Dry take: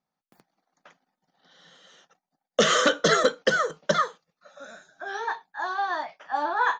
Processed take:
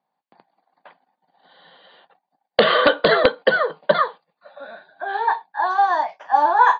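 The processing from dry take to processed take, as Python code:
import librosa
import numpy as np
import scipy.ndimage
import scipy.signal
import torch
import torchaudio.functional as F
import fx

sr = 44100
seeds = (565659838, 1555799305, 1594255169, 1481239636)

y = scipy.signal.sosfilt(scipy.signal.butter(2, 160.0, 'highpass', fs=sr, output='sos'), x)
y = fx.peak_eq(y, sr, hz=870.0, db=10.5, octaves=1.4)
y = fx.notch(y, sr, hz=1300.0, q=6.3)
y = (np.mod(10.0 ** (4.0 / 20.0) * y + 1.0, 2.0) - 1.0) / 10.0 ** (4.0 / 20.0)
y = fx.brickwall_lowpass(y, sr, high_hz=fx.steps((0.0, 4800.0), (5.69, 7700.0)))
y = y * librosa.db_to_amplitude(1.5)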